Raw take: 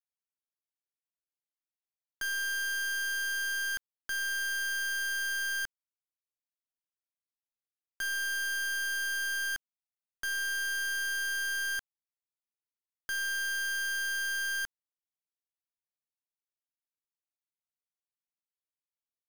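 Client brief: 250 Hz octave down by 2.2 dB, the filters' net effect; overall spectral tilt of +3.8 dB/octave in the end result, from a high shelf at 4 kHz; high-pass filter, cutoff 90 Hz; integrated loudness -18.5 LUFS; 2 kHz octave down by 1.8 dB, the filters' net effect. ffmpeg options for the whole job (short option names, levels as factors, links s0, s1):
-af "highpass=90,equalizer=f=250:t=o:g=-3,equalizer=f=2000:t=o:g=-4,highshelf=f=4000:g=8,volume=3.55"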